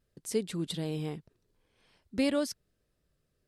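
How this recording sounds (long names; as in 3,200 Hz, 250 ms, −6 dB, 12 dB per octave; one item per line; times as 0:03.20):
background noise floor −78 dBFS
spectral slope −5.0 dB per octave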